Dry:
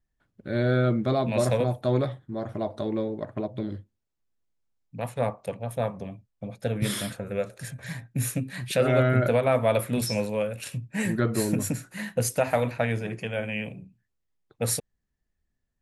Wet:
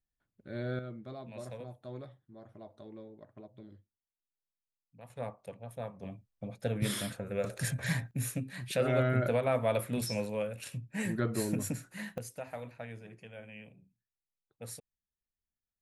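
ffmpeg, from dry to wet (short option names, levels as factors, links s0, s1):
-af "asetnsamples=n=441:p=0,asendcmd='0.79 volume volume -20dB;5.1 volume volume -12.5dB;6.03 volume volume -5dB;7.44 volume volume 4dB;8.11 volume volume -7dB;12.18 volume volume -18dB',volume=0.237"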